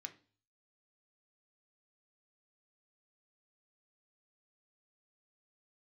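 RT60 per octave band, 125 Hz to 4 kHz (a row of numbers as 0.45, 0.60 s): 0.70, 0.50, 0.40, 0.40, 0.35, 0.45 s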